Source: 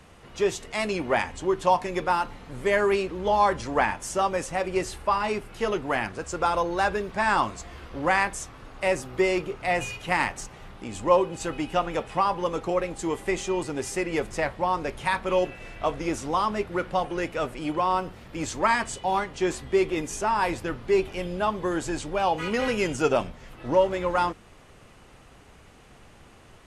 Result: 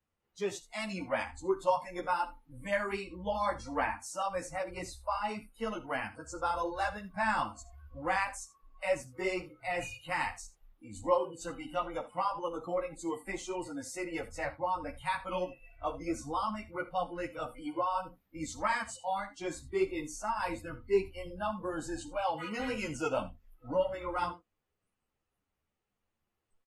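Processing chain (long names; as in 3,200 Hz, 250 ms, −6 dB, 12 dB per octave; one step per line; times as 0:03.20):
noise reduction from a noise print of the clip's start 26 dB
multi-tap delay 55/78 ms −18/−18 dB
string-ensemble chorus
level −5.5 dB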